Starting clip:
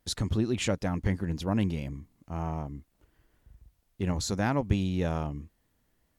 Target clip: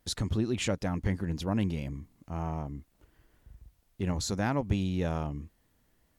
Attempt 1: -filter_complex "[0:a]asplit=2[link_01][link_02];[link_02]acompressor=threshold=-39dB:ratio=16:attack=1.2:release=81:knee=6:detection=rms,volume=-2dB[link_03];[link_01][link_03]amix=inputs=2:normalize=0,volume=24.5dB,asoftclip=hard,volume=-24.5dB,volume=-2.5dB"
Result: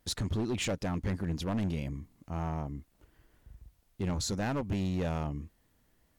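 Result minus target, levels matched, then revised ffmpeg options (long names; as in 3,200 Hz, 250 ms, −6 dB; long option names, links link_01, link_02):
gain into a clipping stage and back: distortion +21 dB
-filter_complex "[0:a]asplit=2[link_01][link_02];[link_02]acompressor=threshold=-39dB:ratio=16:attack=1.2:release=81:knee=6:detection=rms,volume=-2dB[link_03];[link_01][link_03]amix=inputs=2:normalize=0,volume=13.5dB,asoftclip=hard,volume=-13.5dB,volume=-2.5dB"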